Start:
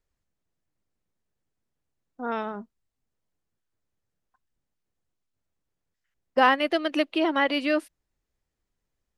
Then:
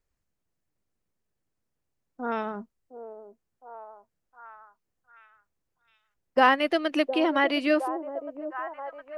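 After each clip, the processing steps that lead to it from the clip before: peaking EQ 3.6 kHz -3.5 dB 0.42 oct; repeats whose band climbs or falls 712 ms, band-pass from 460 Hz, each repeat 0.7 oct, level -7 dB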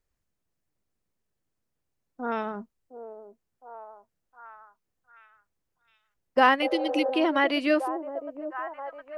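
spectral replace 6.65–7.08 s, 440–1900 Hz after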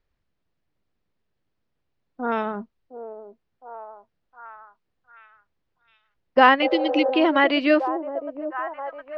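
low-pass 4.5 kHz 24 dB/octave; trim +5 dB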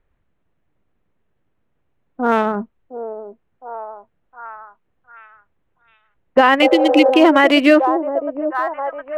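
local Wiener filter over 9 samples; loudness maximiser +10 dB; trim -1 dB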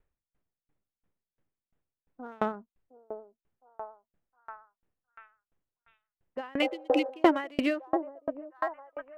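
sawtooth tremolo in dB decaying 2.9 Hz, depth 36 dB; trim -5.5 dB

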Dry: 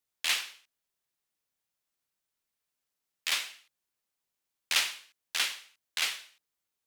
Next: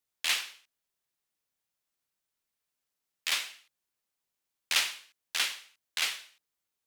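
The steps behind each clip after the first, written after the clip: no audible change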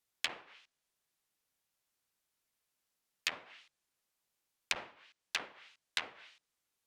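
low-pass that closes with the level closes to 600 Hz, closed at -28.5 dBFS; trim +2 dB

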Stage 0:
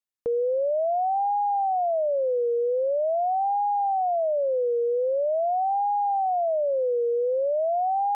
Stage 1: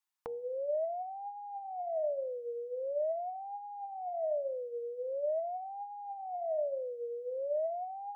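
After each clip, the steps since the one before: resonant low shelf 660 Hz -10 dB, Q 3; de-hum 80.59 Hz, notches 11; compressor with a negative ratio -33 dBFS, ratio -1; trim -4.5 dB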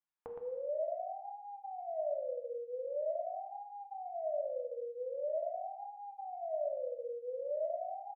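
distance through air 440 m; delay 116 ms -5 dB; gated-style reverb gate 350 ms falling, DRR 3.5 dB; trim -4 dB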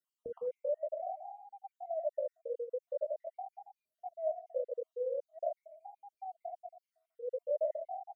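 random holes in the spectrogram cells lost 60%; comb of notches 840 Hz; trim +5 dB

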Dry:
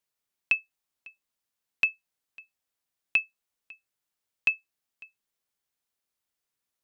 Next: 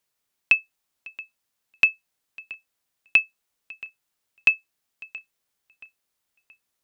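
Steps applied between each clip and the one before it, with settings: filtered feedback delay 676 ms, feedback 45%, low-pass 4.1 kHz, level -19 dB; trim +6.5 dB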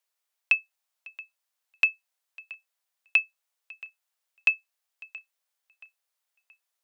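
inverse Chebyshev high-pass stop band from 200 Hz, stop band 50 dB; trim -4 dB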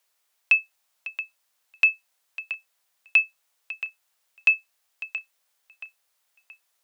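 loudness maximiser +17.5 dB; trim -7.5 dB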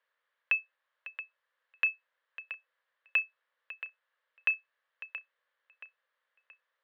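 cabinet simulation 440–3100 Hz, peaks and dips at 520 Hz +9 dB, 760 Hz -8 dB, 1.1 kHz +4 dB, 1.7 kHz +9 dB, 2.5 kHz -6 dB; trim -4 dB

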